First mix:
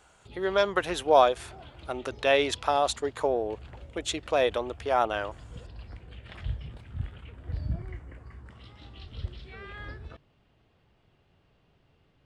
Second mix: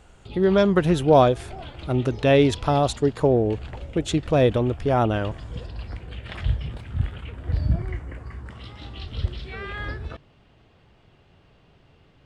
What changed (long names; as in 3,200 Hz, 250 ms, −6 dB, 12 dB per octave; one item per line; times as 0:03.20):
speech: remove high-pass filter 650 Hz 12 dB per octave
background +9.5 dB